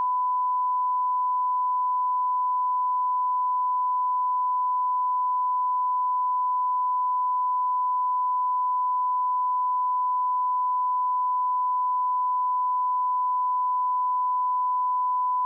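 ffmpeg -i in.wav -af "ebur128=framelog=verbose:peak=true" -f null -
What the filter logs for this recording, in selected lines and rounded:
Integrated loudness:
  I:         -24.4 LUFS
  Threshold: -34.4 LUFS
Loudness range:
  LRA:         0.0 LU
  Threshold: -44.4 LUFS
  LRA low:   -24.4 LUFS
  LRA high:  -24.4 LUFS
True peak:
  Peak:      -21.4 dBFS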